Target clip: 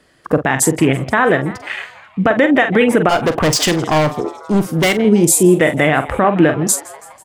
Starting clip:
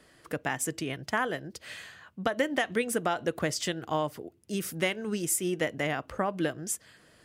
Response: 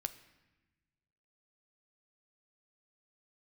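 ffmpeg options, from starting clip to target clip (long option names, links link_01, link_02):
-filter_complex "[0:a]afwtdn=0.0112,highshelf=frequency=9600:gain=-5.5,asplit=6[link_01][link_02][link_03][link_04][link_05][link_06];[link_02]adelay=164,afreqshift=120,volume=-23.5dB[link_07];[link_03]adelay=328,afreqshift=240,volume=-27.4dB[link_08];[link_04]adelay=492,afreqshift=360,volume=-31.3dB[link_09];[link_05]adelay=656,afreqshift=480,volume=-35.1dB[link_10];[link_06]adelay=820,afreqshift=600,volume=-39dB[link_11];[link_01][link_07][link_08][link_09][link_10][link_11]amix=inputs=6:normalize=0,asettb=1/sr,asplit=3[link_12][link_13][link_14];[link_12]atrim=end=3.094[link_15];[link_13]atrim=start=3.09:end=4.98,asetpts=PTS-STARTPTS,afade=type=in:duration=0.004:curve=qsin,afade=type=out:start_time=1.886:duration=0.004:curve=qsin,volume=32.5dB,asoftclip=hard,volume=-32.5dB[link_16];[link_14]atrim=start=4.976[link_17];[link_15][link_16]acrossfade=duration=0.004:curve1=hsin:curve2=qsin[link_18];[link_18][link_17]acrossfade=duration=0.004:curve1=qsin:curve2=hsin,asplit=2[link_19][link_20];[link_20]adelay=45,volume=-12dB[link_21];[link_19][link_21]amix=inputs=2:normalize=0,alimiter=level_in=22.5dB:limit=-1dB:release=50:level=0:latency=1,volume=-1dB"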